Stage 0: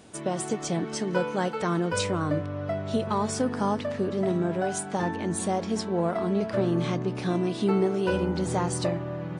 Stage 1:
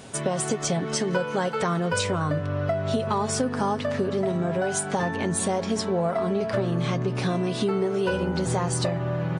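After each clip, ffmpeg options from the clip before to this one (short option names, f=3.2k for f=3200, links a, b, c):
-af "equalizer=f=310:w=4.5:g=-8.5,aecho=1:1:7.4:0.36,acompressor=threshold=-31dB:ratio=4,volume=8.5dB"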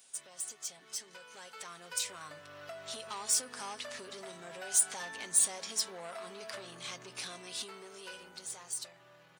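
-af "asoftclip=type=tanh:threshold=-20dB,aderivative,dynaudnorm=f=370:g=11:m=12dB,volume=-8dB"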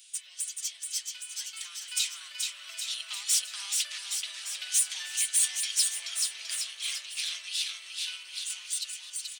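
-filter_complex "[0:a]aeval=exprs='(tanh(22.4*val(0)+0.5)-tanh(0.5))/22.4':c=same,highpass=f=2.9k:t=q:w=2,asplit=2[a][b];[b]aecho=0:1:430|817|1165|1479|1761:0.631|0.398|0.251|0.158|0.1[c];[a][c]amix=inputs=2:normalize=0,volume=7dB"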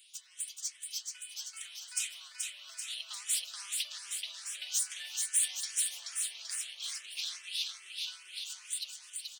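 -filter_complex "[0:a]asplit=2[a][b];[b]afreqshift=2.4[c];[a][c]amix=inputs=2:normalize=1,volume=-2.5dB"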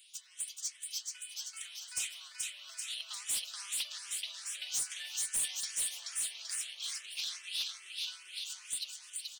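-af "asoftclip=type=hard:threshold=-29.5dB"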